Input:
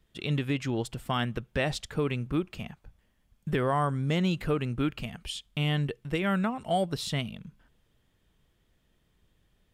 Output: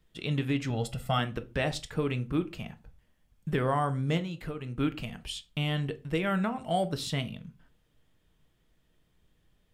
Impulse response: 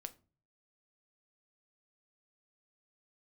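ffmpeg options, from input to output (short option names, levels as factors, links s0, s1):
-filter_complex "[0:a]asettb=1/sr,asplit=3[s0][s1][s2];[s0]atrim=end=0.704[s3];[s1]atrim=start=0.7:end=1.19,asetpts=PTS-STARTPTS,afade=t=in:d=0.004:c=qsin,afade=t=out:st=0.486:d=0.004:c=qsin,aecho=1:1:1.5:0.75,atrim=end_sample=21609[s4];[s2]atrim=start=1.186[s5];[s3][s4]acrossfade=d=0.004:c1=hsin:c2=qsin[s6];[s6][s5]acrossfade=d=0.004:c1=qsin:c2=hsin,asettb=1/sr,asplit=3[s7][s8][s9];[s7]atrim=end=4.174[s10];[s8]atrim=start=4.17:end=4.77,asetpts=PTS-STARTPTS,afade=t=in:d=0.004:c=qsin,afade=t=out:st=0.596:d=0.004:c=qsin,acompressor=threshold=0.0224:ratio=5[s11];[s9]atrim=start=4.766[s12];[s10][s11]acrossfade=d=0.004:c1=hsin:c2=qsin[s13];[s13][s12]acrossfade=d=0.004:c1=qsin:c2=hsin[s14];[1:a]atrim=start_sample=2205,afade=t=out:st=0.2:d=0.01,atrim=end_sample=9261[s15];[s14][s15]afir=irnorm=-1:irlink=0,volume=1.5"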